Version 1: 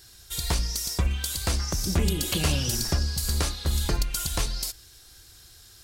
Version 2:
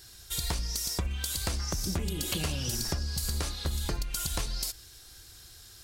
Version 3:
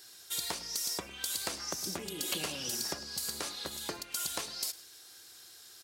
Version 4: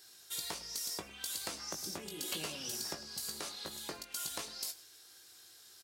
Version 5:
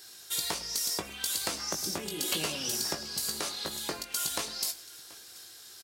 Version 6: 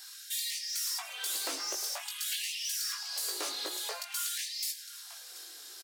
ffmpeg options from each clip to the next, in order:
-af "acompressor=threshold=-28dB:ratio=6"
-filter_complex "[0:a]highpass=300,asplit=2[a][b];[b]adelay=105,volume=-18dB,highshelf=f=4k:g=-2.36[c];[a][c]amix=inputs=2:normalize=0,volume=-1.5dB"
-filter_complex "[0:a]asplit=2[a][b];[b]adelay=19,volume=-7.5dB[c];[a][c]amix=inputs=2:normalize=0,volume=-5dB"
-af "aecho=1:1:732:0.0794,volume=8dB"
-af "asoftclip=type=tanh:threshold=-32dB,afftfilt=real='re*gte(b*sr/1024,250*pow(1800/250,0.5+0.5*sin(2*PI*0.49*pts/sr)))':imag='im*gte(b*sr/1024,250*pow(1800/250,0.5+0.5*sin(2*PI*0.49*pts/sr)))':win_size=1024:overlap=0.75,volume=2dB"

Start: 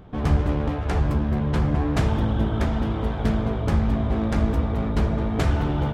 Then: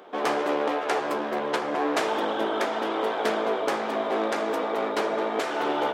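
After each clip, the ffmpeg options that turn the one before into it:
-af "highpass=f=380:w=0.5412,highpass=f=380:w=1.3066,alimiter=limit=-20dB:level=0:latency=1:release=302,volume=6.5dB"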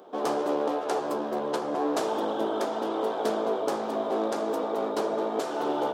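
-af "equalizer=f=2.1k:w=1.1:g=-14"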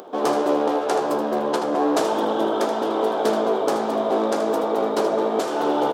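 -af "aecho=1:1:78:0.316,acompressor=mode=upward:threshold=-44dB:ratio=2.5,volume=6.5dB"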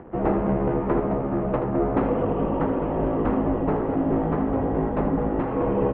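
-filter_complex "[0:a]asplit=2[a][b];[b]acrusher=bits=5:mix=0:aa=0.000001,volume=-11dB[c];[a][c]amix=inputs=2:normalize=0,highpass=f=570:t=q:w=0.5412,highpass=f=570:t=q:w=1.307,lowpass=f=2.3k:t=q:w=0.5176,lowpass=f=2.3k:t=q:w=0.7071,lowpass=f=2.3k:t=q:w=1.932,afreqshift=-390"

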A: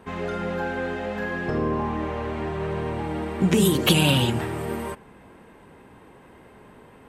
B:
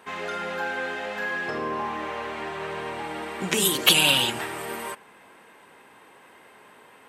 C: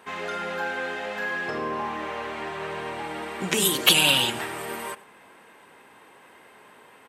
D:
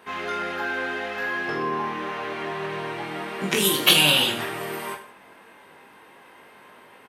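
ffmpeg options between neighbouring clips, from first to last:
-af "highpass=f=1.4k:p=1,volume=5.5dB"
-af "aecho=1:1:98:0.0841"
-af "equalizer=f=7.7k:t=o:w=0.35:g=-7.5,aecho=1:1:20|46|79.8|123.7|180.9:0.631|0.398|0.251|0.158|0.1"

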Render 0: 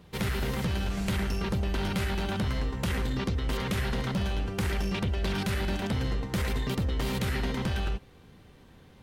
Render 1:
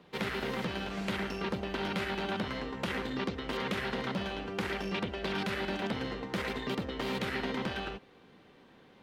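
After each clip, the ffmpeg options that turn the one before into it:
-filter_complex "[0:a]acrossover=split=190 4700:gain=0.112 1 0.224[a][b][c];[a][b][c]amix=inputs=3:normalize=0"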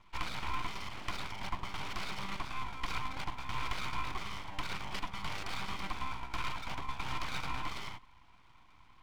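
-filter_complex "[0:a]asplit=3[a][b][c];[a]bandpass=f=530:t=q:w=8,volume=0dB[d];[b]bandpass=f=1.84k:t=q:w=8,volume=-6dB[e];[c]bandpass=f=2.48k:t=q:w=8,volume=-9dB[f];[d][e][f]amix=inputs=3:normalize=0,aeval=exprs='abs(val(0))':c=same,volume=10.5dB"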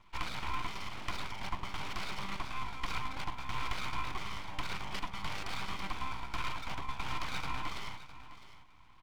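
-af "aecho=1:1:658:0.188"

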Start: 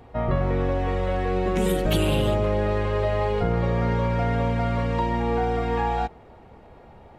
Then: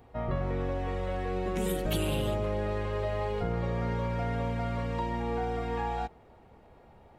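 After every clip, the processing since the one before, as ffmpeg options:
-af "highshelf=f=8.8k:g=8,volume=-8dB"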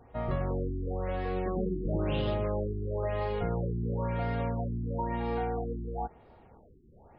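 -af "afftfilt=real='re*lt(b*sr/1024,410*pow(5400/410,0.5+0.5*sin(2*PI*0.99*pts/sr)))':imag='im*lt(b*sr/1024,410*pow(5400/410,0.5+0.5*sin(2*PI*0.99*pts/sr)))':win_size=1024:overlap=0.75"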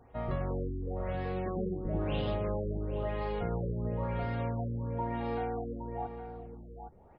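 -filter_complex "[0:a]asplit=2[a][b];[b]adelay=816.3,volume=-9dB,highshelf=f=4k:g=-18.4[c];[a][c]amix=inputs=2:normalize=0,volume=-2.5dB"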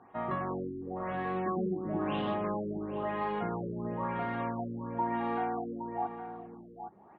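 -af "highpass=190,equalizer=f=200:t=q:w=4:g=7,equalizer=f=340:t=q:w=4:g=6,equalizer=f=500:t=q:w=4:g=-7,equalizer=f=780:t=q:w=4:g=5,equalizer=f=1.1k:t=q:w=4:g=10,equalizer=f=1.7k:t=q:w=4:g=6,lowpass=f=3.6k:w=0.5412,lowpass=f=3.6k:w=1.3066"

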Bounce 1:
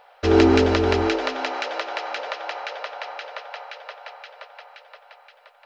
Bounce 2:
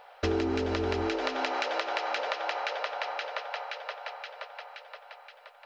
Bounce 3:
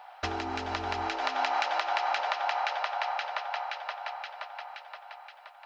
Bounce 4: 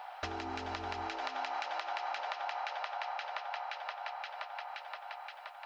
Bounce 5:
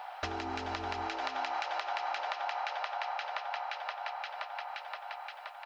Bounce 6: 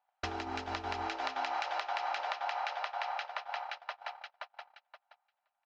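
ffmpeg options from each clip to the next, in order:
-af "acompressor=threshold=-26dB:ratio=8"
-af "lowshelf=f=610:t=q:w=3:g=-7"
-af "acompressor=threshold=-44dB:ratio=2.5,volume=3dB"
-filter_complex "[0:a]asplit=2[a][b];[b]adelay=384,lowpass=f=2k:p=1,volume=-22.5dB,asplit=2[c][d];[d]adelay=384,lowpass=f=2k:p=1,volume=0.5,asplit=2[e][f];[f]adelay=384,lowpass=f=2k:p=1,volume=0.5[g];[a][c][e][g]amix=inputs=4:normalize=0,volume=2.5dB"
-af "agate=range=-38dB:threshold=-37dB:ratio=16:detection=peak"

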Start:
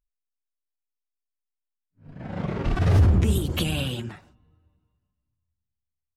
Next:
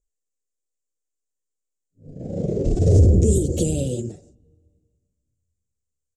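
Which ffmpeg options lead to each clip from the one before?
-af "firequalizer=gain_entry='entry(220,0);entry(490,9);entry(990,-30);entry(7200,11);entry(12000,-13)':delay=0.05:min_phase=1,volume=3.5dB"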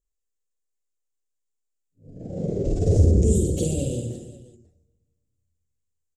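-af "aecho=1:1:50|120|218|355.2|547.3:0.631|0.398|0.251|0.158|0.1,volume=-4.5dB"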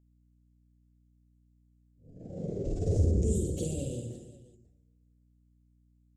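-af "aeval=exprs='val(0)+0.00178*(sin(2*PI*60*n/s)+sin(2*PI*2*60*n/s)/2+sin(2*PI*3*60*n/s)/3+sin(2*PI*4*60*n/s)/4+sin(2*PI*5*60*n/s)/5)':c=same,volume=-9dB"

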